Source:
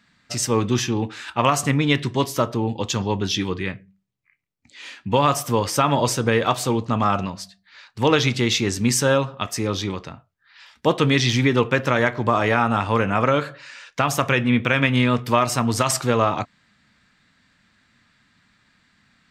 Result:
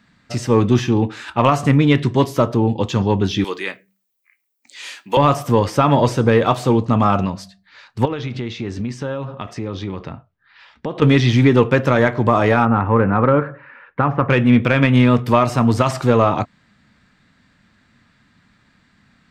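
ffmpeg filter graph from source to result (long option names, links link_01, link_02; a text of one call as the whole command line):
ffmpeg -i in.wav -filter_complex "[0:a]asettb=1/sr,asplit=3[link_01][link_02][link_03];[link_01]atrim=end=3.444[link_04];[link_02]atrim=start=3.44:end=5.17,asetpts=PTS-STARTPTS,afade=type=in:duration=0.004:curve=qsin,afade=type=out:start_time=1.726:duration=0.004:curve=qsin,highpass=310,aemphasis=mode=production:type=riaa[link_05];[link_03]atrim=start=5.166[link_06];[link_04][link_05]acrossfade=duration=0.004:curve1=hsin:curve2=qsin[link_07];[link_07][link_06]acrossfade=duration=0.004:curve1=qsin:curve2=hsin,asettb=1/sr,asplit=3[link_08][link_09][link_10];[link_08]atrim=end=8.054[link_11];[link_09]atrim=start=8.05:end=11.02,asetpts=PTS-STARTPTS,afade=type=in:duration=0.004:curve=qsin,afade=type=out:start_time=2.966:duration=0.004:curve=qsin,acompressor=threshold=-28dB:ratio=5:attack=3.2:release=140:knee=1:detection=peak,lowpass=4000[link_12];[link_10]atrim=start=11.016[link_13];[link_11][link_12]acrossfade=duration=0.004:curve1=hsin:curve2=qsin[link_14];[link_14][link_13]acrossfade=duration=0.004:curve1=qsin:curve2=hsin,asettb=1/sr,asplit=3[link_15][link_16][link_17];[link_15]atrim=end=12.654[link_18];[link_16]atrim=start=12.65:end=14.3,asetpts=PTS-STARTPTS,afade=type=in:duration=0.004:curve=qsin,afade=type=out:start_time=1.646:duration=0.004:curve=qsin,lowpass=frequency=1900:width=0.5412,lowpass=frequency=1900:width=1.3066,bandreject=frequency=650:width=5.9[link_19];[link_17]atrim=start=14.296[link_20];[link_18][link_19]acrossfade=duration=0.004:curve1=hsin:curve2=qsin[link_21];[link_21][link_20]acrossfade=duration=0.004:curve1=qsin:curve2=hsin,acontrast=36,tiltshelf=frequency=1200:gain=4,acrossover=split=4100[link_22][link_23];[link_23]acompressor=threshold=-33dB:ratio=4:attack=1:release=60[link_24];[link_22][link_24]amix=inputs=2:normalize=0,volume=-2dB" out.wav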